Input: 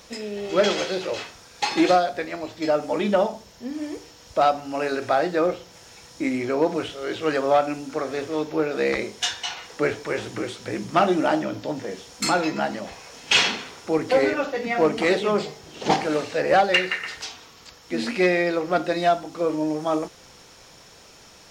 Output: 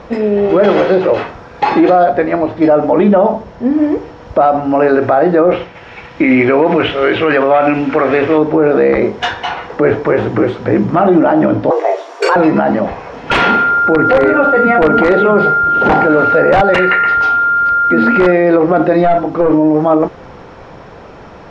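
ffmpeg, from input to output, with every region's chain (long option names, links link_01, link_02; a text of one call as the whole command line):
ffmpeg -i in.wav -filter_complex "[0:a]asettb=1/sr,asplit=3[link_01][link_02][link_03];[link_01]atrim=end=5.514[link_04];[link_02]atrim=start=5.51:end=8.38,asetpts=PTS-STARTPTS,afade=type=in:duration=0.004:curve=qsin,afade=type=out:start_time=2.866:duration=0.004:curve=qsin,agate=range=-33dB:threshold=-44dB:ratio=3:release=100:detection=peak,equalizer=frequency=2500:width_type=o:width=1.4:gain=14.5[link_05];[link_03]atrim=start=8.376[link_06];[link_04][link_05]acrossfade=duration=0.004:curve1=hsin:curve2=qsin[link_07];[link_07][link_06]acrossfade=duration=0.004:curve1=qsin:curve2=hsin,asettb=1/sr,asplit=3[link_08][link_09][link_10];[link_08]atrim=end=11.704[link_11];[link_09]atrim=start=11.7:end=12.36,asetpts=PTS-STARTPTS,afade=type=in:duration=0.004:curve=qsin,afade=type=out:start_time=0.656:duration=0.004:curve=qsin,highpass=150,aemphasis=mode=production:type=50kf,afreqshift=200[link_12];[link_10]atrim=start=12.356[link_13];[link_11][link_12]acrossfade=duration=0.004:curve1=hsin:curve2=qsin[link_14];[link_14][link_13]acrossfade=duration=0.004:curve1=qsin:curve2=hsin,asettb=1/sr,asplit=3[link_15][link_16][link_17];[link_15]atrim=end=13.304[link_18];[link_16]atrim=start=13.3:end=18.32,asetpts=PTS-STARTPTS,afade=type=in:duration=0.004:curve=qsin,afade=type=out:start_time=5.016:duration=0.004:curve=qsin,aeval=exprs='val(0)+0.0631*sin(2*PI*1400*n/s)':channel_layout=same,aeval=exprs='(mod(2.99*val(0)+1,2)-1)/2.99':channel_layout=same[link_19];[link_17]atrim=start=18.316[link_20];[link_18][link_19]acrossfade=duration=0.004:curve1=hsin:curve2=qsin[link_21];[link_21][link_20]acrossfade=duration=0.004:curve1=qsin:curve2=hsin,asettb=1/sr,asplit=3[link_22][link_23][link_24];[link_22]atrim=end=19.044[link_25];[link_23]atrim=start=19.04:end=19.52,asetpts=PTS-STARTPTS,afade=type=in:duration=0.004:curve=qsin,afade=type=out:start_time=0.476:duration=0.004:curve=qsin,asplit=2[link_26][link_27];[link_27]adelay=41,volume=-13dB[link_28];[link_26][link_28]amix=inputs=2:normalize=0,atrim=end_sample=21168,aeval=exprs='clip(val(0),-1,0.0596)':channel_layout=same[link_29];[link_24]atrim=start=19.516[link_30];[link_25][link_29]acrossfade=duration=0.004:curve1=hsin:curve2=qsin[link_31];[link_31][link_30]acrossfade=duration=0.004:curve1=qsin:curve2=hsin,lowpass=1300,alimiter=level_in=20dB:limit=-1dB:release=50:level=0:latency=1,volume=-1dB" out.wav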